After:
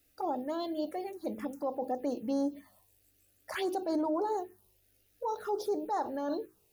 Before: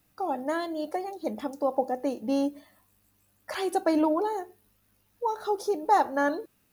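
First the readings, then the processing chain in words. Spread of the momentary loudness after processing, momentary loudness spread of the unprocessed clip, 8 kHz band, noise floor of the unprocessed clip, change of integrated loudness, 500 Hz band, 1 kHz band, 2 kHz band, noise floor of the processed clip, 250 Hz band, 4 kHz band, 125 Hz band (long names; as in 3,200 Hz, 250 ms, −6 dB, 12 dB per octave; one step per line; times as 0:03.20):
7 LU, 10 LU, −7.0 dB, −69 dBFS, −6.0 dB, −5.5 dB, −8.0 dB, −10.5 dB, −70 dBFS, −5.0 dB, −5.0 dB, can't be measured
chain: hum removal 53.01 Hz, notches 9
brickwall limiter −23.5 dBFS, peak gain reduction 12 dB
phaser swept by the level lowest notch 160 Hz, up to 2,800 Hz, full sweep at −27 dBFS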